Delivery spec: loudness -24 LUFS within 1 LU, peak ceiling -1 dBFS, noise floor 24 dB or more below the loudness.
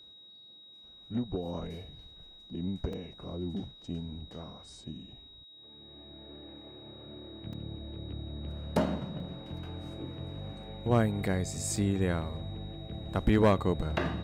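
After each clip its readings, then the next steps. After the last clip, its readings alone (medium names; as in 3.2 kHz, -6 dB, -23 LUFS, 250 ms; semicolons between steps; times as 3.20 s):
dropouts 4; longest dropout 3.1 ms; steady tone 3.8 kHz; tone level -51 dBFS; loudness -33.5 LUFS; peak level -15.5 dBFS; loudness target -24.0 LUFS
-> interpolate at 2.93/7.53/9.20/11.76 s, 3.1 ms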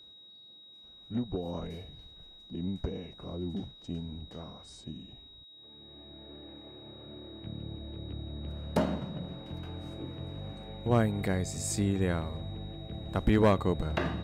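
dropouts 0; steady tone 3.8 kHz; tone level -51 dBFS
-> band-stop 3.8 kHz, Q 30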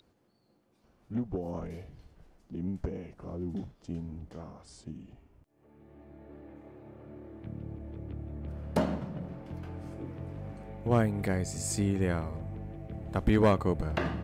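steady tone not found; loudness -33.5 LUFS; peak level -15.5 dBFS; loudness target -24.0 LUFS
-> trim +9.5 dB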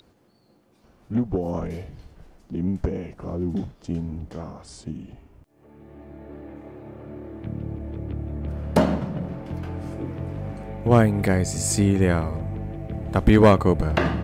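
loudness -24.0 LUFS; peak level -6.0 dBFS; noise floor -60 dBFS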